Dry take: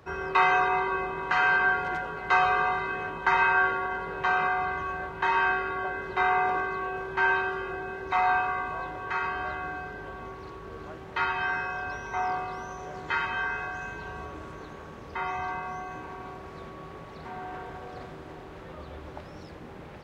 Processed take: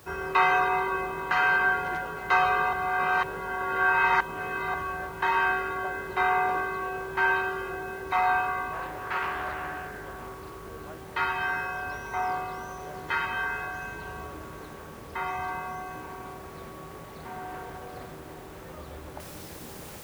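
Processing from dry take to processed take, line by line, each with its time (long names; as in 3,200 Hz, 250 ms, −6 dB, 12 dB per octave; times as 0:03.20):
0:02.73–0:04.74: reverse
0:08.73–0:10.69: highs frequency-modulated by the lows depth 0.32 ms
0:19.20: noise floor change −57 dB −47 dB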